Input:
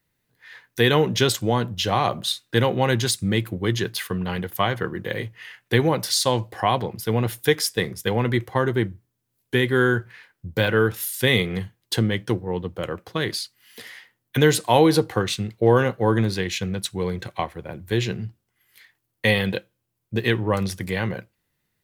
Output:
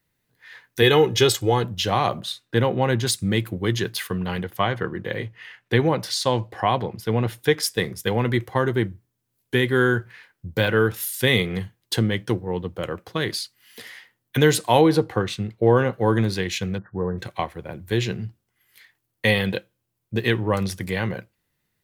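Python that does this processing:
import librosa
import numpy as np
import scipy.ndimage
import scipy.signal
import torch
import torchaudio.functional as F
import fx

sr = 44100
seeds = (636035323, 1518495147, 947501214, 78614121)

y = fx.comb(x, sr, ms=2.4, depth=0.65, at=(0.82, 1.64))
y = fx.high_shelf(y, sr, hz=2800.0, db=-8.5, at=(2.2, 3.07))
y = fx.high_shelf(y, sr, hz=6700.0, db=-11.5, at=(4.43, 7.63))
y = fx.high_shelf(y, sr, hz=3400.0, db=-9.0, at=(14.81, 15.93))
y = fx.brickwall_lowpass(y, sr, high_hz=1900.0, at=(16.78, 17.18))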